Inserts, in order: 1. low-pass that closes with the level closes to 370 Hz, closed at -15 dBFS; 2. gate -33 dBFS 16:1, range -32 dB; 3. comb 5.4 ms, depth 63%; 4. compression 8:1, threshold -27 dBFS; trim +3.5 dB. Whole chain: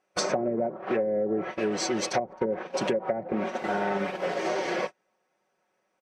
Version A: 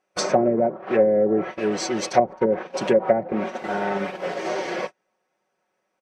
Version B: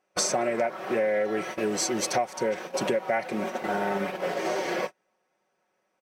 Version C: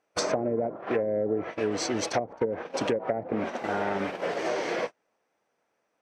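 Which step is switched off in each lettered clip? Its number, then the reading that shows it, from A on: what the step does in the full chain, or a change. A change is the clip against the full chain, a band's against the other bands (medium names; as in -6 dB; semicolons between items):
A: 4, mean gain reduction 4.0 dB; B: 1, 8 kHz band +5.0 dB; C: 3, 125 Hz band +2.0 dB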